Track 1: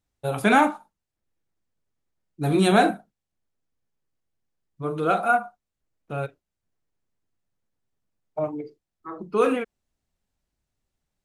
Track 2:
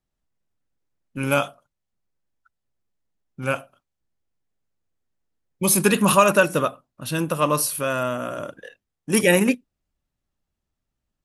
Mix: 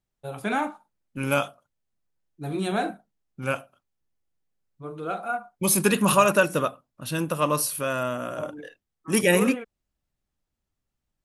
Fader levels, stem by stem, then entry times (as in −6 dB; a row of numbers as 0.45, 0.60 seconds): −8.5, −3.0 decibels; 0.00, 0.00 seconds